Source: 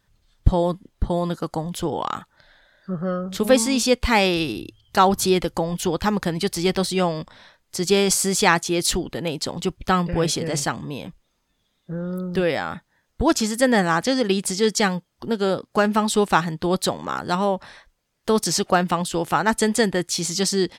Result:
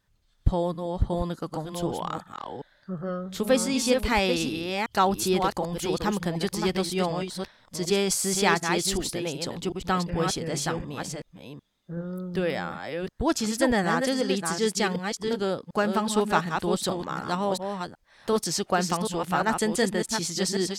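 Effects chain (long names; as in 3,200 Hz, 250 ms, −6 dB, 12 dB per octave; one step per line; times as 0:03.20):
delay that plays each chunk backwards 374 ms, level −5 dB
level −6 dB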